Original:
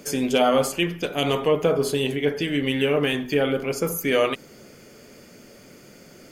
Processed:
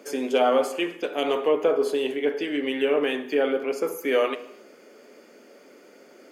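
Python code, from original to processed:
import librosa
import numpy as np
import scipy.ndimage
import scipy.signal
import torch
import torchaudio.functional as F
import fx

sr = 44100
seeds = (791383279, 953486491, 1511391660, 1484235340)

y = scipy.signal.sosfilt(scipy.signal.butter(4, 290.0, 'highpass', fs=sr, output='sos'), x)
y = fx.high_shelf(y, sr, hz=3000.0, db=-11.5)
y = fx.rev_gated(y, sr, seeds[0], gate_ms=310, shape='falling', drr_db=12.0)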